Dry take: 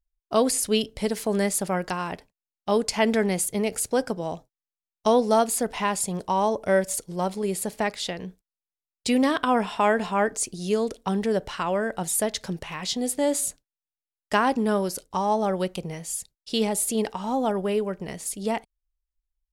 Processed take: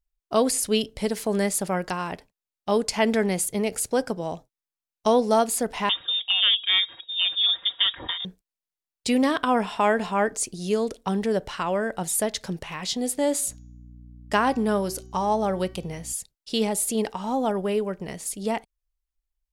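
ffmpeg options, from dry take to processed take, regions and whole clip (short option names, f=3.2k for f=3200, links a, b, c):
-filter_complex "[0:a]asettb=1/sr,asplit=3[a][b][c];[a]atrim=end=5.894[d];[b]atrim=start=5.89:end=8.25,asetpts=PTS-STARTPTS,afade=t=in:d=0.004:c=qsin,afade=t=out:st=2.356:d=0.004:c=qsin,aecho=1:1:4.6:0.98,atrim=end_sample=104076,volume=15.5dB,asoftclip=hard,volume=-15.5dB,lowpass=f=3.2k:t=q:w=0.5098,lowpass=f=3.2k:t=q:w=0.6013,lowpass=f=3.2k:t=q:w=0.9,lowpass=f=3.2k:t=q:w=2.563,afreqshift=-3800[e];[c]atrim=start=8.246[f];[d][e]acrossfade=d=0.004:c1=hsin:c2=qsin[g];[g][f]acrossfade=d=0.004:c1=qsin:c2=hsin,asettb=1/sr,asplit=3[h][i][j];[h]atrim=end=13.484[k];[i]atrim=start=13.48:end=16.13,asetpts=PTS-STARTPTS,afade=t=in:d=0.004:c=qsin,afade=t=out:st=2.646:d=0.004:c=qsin,bandreject=f=378.5:t=h:w=4,bandreject=f=757:t=h:w=4,bandreject=f=1.1355k:t=h:w=4,bandreject=f=1.514k:t=h:w=4,bandreject=f=1.8925k:t=h:w=4,bandreject=f=2.271k:t=h:w=4,bandreject=f=2.6495k:t=h:w=4,bandreject=f=3.028k:t=h:w=4,bandreject=f=3.4065k:t=h:w=4,bandreject=f=3.785k:t=h:w=4,bandreject=f=4.1635k:t=h:w=4,bandreject=f=4.542k:t=h:w=4,bandreject=f=4.9205k:t=h:w=4,bandreject=f=5.299k:t=h:w=4,bandreject=f=5.6775k:t=h:w=4,bandreject=f=6.056k:t=h:w=4,bandreject=f=6.4345k:t=h:w=4,bandreject=f=6.813k:t=h:w=4,aeval=exprs='val(0)+0.00631*(sin(2*PI*60*n/s)+sin(2*PI*2*60*n/s)/2+sin(2*PI*3*60*n/s)/3+sin(2*PI*4*60*n/s)/4+sin(2*PI*5*60*n/s)/5)':c=same[l];[j]atrim=start=16.126[m];[k][l]acrossfade=d=0.004:c1=hsin:c2=qsin[n];[n][m]acrossfade=d=0.004:c1=qsin:c2=hsin"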